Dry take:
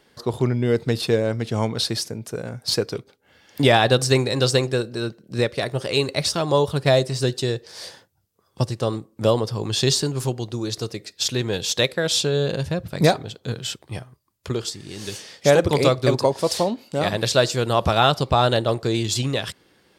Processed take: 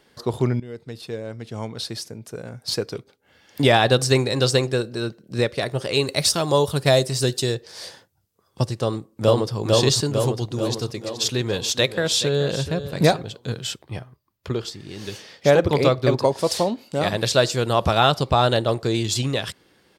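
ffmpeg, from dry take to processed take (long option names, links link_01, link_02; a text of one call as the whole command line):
ffmpeg -i in.wav -filter_complex "[0:a]asettb=1/sr,asplit=3[link_01][link_02][link_03];[link_01]atrim=end=6.074[link_04];[link_02]atrim=start=6.07:end=7.55,asetpts=PTS-STARTPTS,afade=type=in:duration=0.004:curve=qsin,afade=type=out:start_time=1.476:duration=0.004:curve=qsin,highshelf=frequency=6800:gain=11[link_05];[link_03]atrim=start=7.546[link_06];[link_04][link_05]acrossfade=duration=0.004:curve1=hsin:curve2=qsin[link_07];[link_07][link_06]acrossfade=duration=0.004:curve1=qsin:curve2=hsin,asplit=2[link_08][link_09];[link_09]afade=type=in:start_time=8.82:duration=0.01,afade=type=out:start_time=9.55:duration=0.01,aecho=0:1:450|900|1350|1800|2250|2700|3150|3600|4050:0.891251|0.534751|0.32085|0.19251|0.115506|0.0693037|0.0415822|0.0249493|0.0149696[link_10];[link_08][link_10]amix=inputs=2:normalize=0,asettb=1/sr,asplit=3[link_11][link_12][link_13];[link_11]atrim=end=10.084[link_14];[link_12]atrim=start=10.08:end=13.27,asetpts=PTS-STARTPTS,afade=type=in:duration=0.004:curve=qsin,afade=type=out:start_time=3.186:duration=0.004:curve=qsin,aecho=1:1:428:0.237,atrim=end_sample=140679[link_15];[link_13]atrim=start=13.266[link_16];[link_14][link_15]acrossfade=duration=0.004:curve1=hsin:curve2=qsin[link_17];[link_17][link_16]acrossfade=duration=0.004:curve1=qsin:curve2=hsin,asettb=1/sr,asplit=3[link_18][link_19][link_20];[link_18]atrim=end=13.824[link_21];[link_19]atrim=start=13.82:end=16.24,asetpts=PTS-STARTPTS,afade=type=in:duration=0.004:curve=qsin,afade=type=out:start_time=2.416:duration=0.004:curve=qsin,equalizer=frequency=8800:width_type=o:width=1.3:gain=-9.5[link_22];[link_20]atrim=start=16.236[link_23];[link_21][link_22]acrossfade=duration=0.004:curve1=hsin:curve2=qsin[link_24];[link_24][link_23]acrossfade=duration=0.004:curve1=qsin:curve2=hsin,asplit=2[link_25][link_26];[link_25]atrim=end=0.6,asetpts=PTS-STARTPTS,afade=type=out:start_time=0.596:duration=0.004:curve=hsin:silence=0.125893[link_27];[link_26]atrim=start=0.6,asetpts=PTS-STARTPTS,afade=type=in:duration=3.27:silence=0.125893[link_28];[link_27][link_28]concat=n=2:v=0:a=1" out.wav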